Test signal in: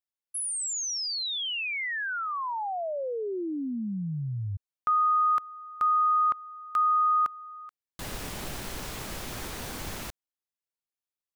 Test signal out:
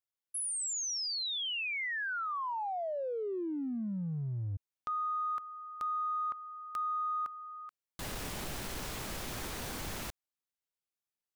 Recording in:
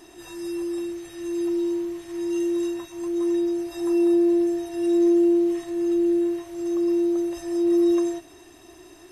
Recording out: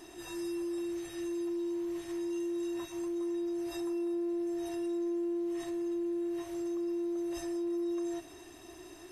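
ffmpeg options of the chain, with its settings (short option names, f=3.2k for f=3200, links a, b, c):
-af "acompressor=threshold=-31dB:ratio=5:attack=0.48:release=22:knee=1:detection=peak,volume=-2.5dB"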